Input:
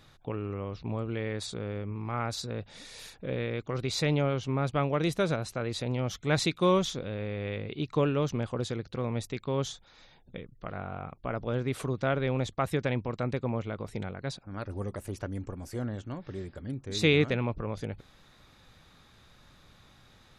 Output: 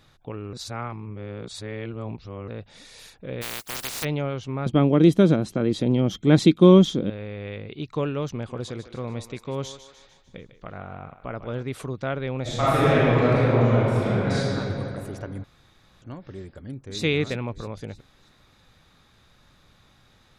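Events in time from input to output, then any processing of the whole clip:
0.53–2.48 reverse
3.41–4.03 spectral contrast lowered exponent 0.13
4.66–7.1 small resonant body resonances 210/300/3200 Hz, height 16 dB, ringing for 35 ms
8.31–11.63 thinning echo 0.15 s, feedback 53%, high-pass 430 Hz, level -11 dB
12.42–14.54 reverb throw, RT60 3 s, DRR -12 dB
15.44–16.02 room tone
16.58–17.03 echo throw 0.32 s, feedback 40%, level -8 dB

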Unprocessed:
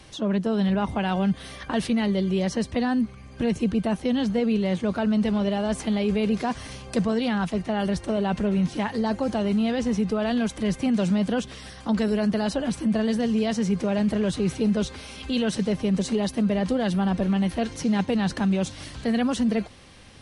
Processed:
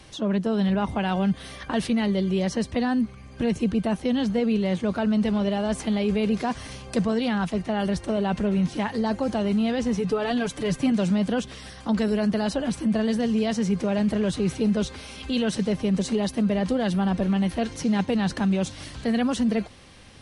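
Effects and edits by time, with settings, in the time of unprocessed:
9.97–10.92 comb 6.9 ms

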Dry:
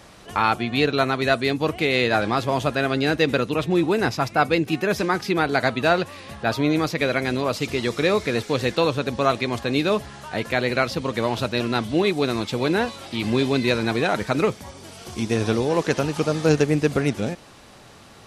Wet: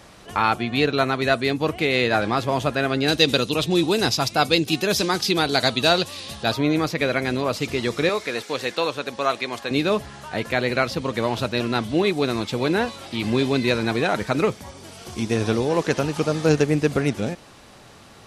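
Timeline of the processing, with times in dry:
3.08–6.52 resonant high shelf 2700 Hz +9 dB, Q 1.5
8.09–9.71 HPF 580 Hz 6 dB/oct

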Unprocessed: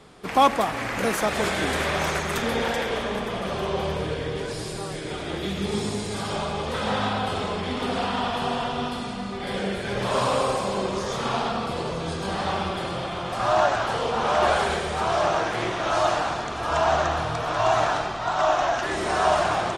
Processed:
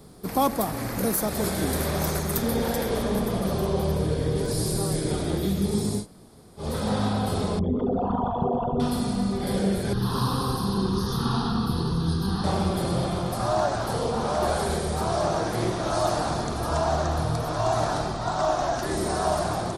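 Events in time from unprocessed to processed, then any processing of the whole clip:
6.02–6.61 room tone, crossfade 0.10 s
7.59–8.8 formant sharpening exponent 3
9.93–12.44 fixed phaser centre 2200 Hz, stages 6
whole clip: EQ curve 190 Hz 0 dB, 2900 Hz -17 dB, 4400 Hz -4 dB, 7100 Hz -6 dB, 13000 Hz +12 dB; vocal rider 0.5 s; gain +6 dB

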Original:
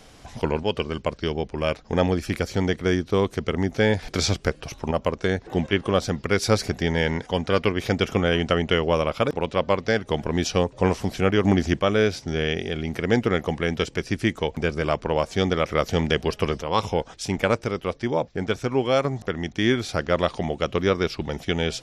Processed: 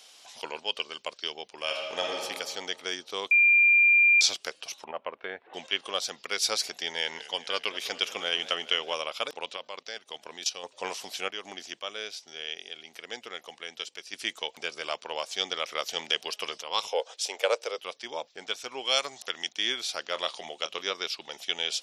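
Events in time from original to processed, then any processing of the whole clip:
1.63–2.13 reverb throw, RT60 1.9 s, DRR -0.5 dB
3.31–4.21 bleep 2390 Hz -13.5 dBFS
4.84–5.54 LPF 2300 Hz 24 dB/oct
6.88–8.94 warbling echo 0.203 s, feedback 65%, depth 137 cents, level -16 dB
9.56–10.64 level quantiser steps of 14 dB
11.28–14.13 gain -6.5 dB
16.92–17.78 resonant high-pass 490 Hz, resonance Q 4.1
18.87–19.49 high shelf 2300 Hz +8.5 dB
20.05–20.91 doubler 25 ms -12 dB
whole clip: HPF 740 Hz 12 dB/oct; resonant high shelf 2400 Hz +7 dB, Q 1.5; gain -6 dB

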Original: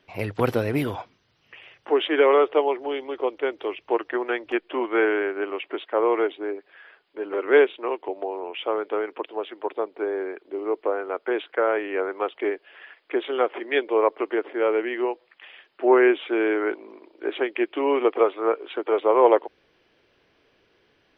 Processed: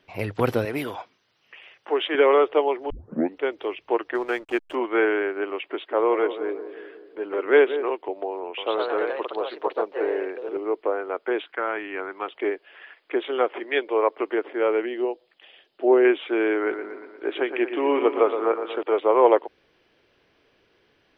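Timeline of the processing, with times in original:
0.65–2.15 HPF 420 Hz 6 dB/oct
2.9 tape start 0.50 s
4.15–4.75 backlash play -39.5 dBFS
5.58–7.9 darkening echo 0.18 s, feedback 62%, low-pass 930 Hz, level -10 dB
8.44–10.68 echoes that change speed 0.135 s, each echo +2 st, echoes 2
11.45–12.28 bell 500 Hz -10.5 dB 0.88 oct
13.64–14.18 HPF 280 Hz 6 dB/oct
14.86–16.05 band shelf 1500 Hz -8.5 dB
16.55–18.83 analogue delay 0.118 s, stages 2048, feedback 59%, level -9 dB

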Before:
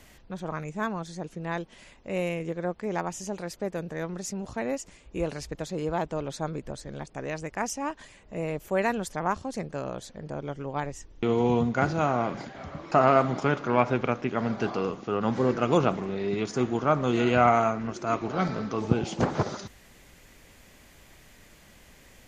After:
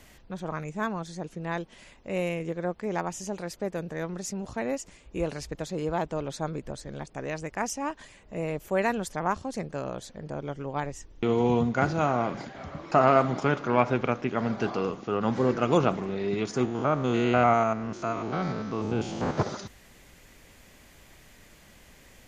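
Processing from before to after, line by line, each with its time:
16.65–19.38 stepped spectrum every 0.1 s

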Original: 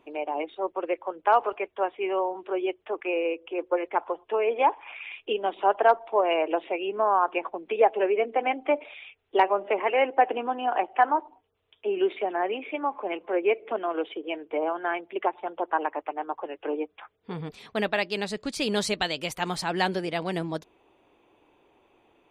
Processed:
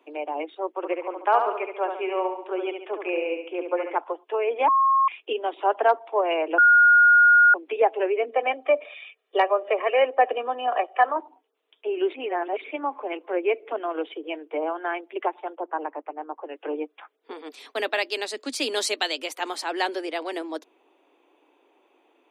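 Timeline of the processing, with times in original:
0.71–3.96 feedback echo 70 ms, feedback 47%, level -6 dB
4.68–5.08 bleep 1080 Hz -16 dBFS
6.58–7.54 bleep 1430 Hz -11.5 dBFS
8.3–11.16 comb 1.7 ms
12.14–12.64 reverse
15.55–16.49 tape spacing loss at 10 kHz 37 dB
17.36–19.18 high shelf 3100 Hz +5.5 dB
whole clip: steep high-pass 250 Hz 96 dB/oct

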